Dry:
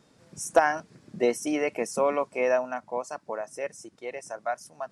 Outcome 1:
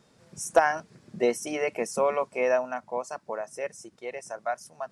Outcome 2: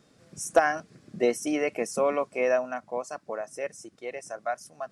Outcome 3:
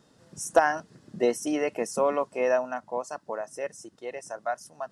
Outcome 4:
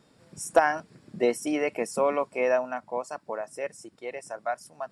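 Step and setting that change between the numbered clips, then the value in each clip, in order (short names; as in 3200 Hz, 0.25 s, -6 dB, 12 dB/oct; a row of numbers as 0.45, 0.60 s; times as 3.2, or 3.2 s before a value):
notch, frequency: 290, 920, 2300, 6200 Hz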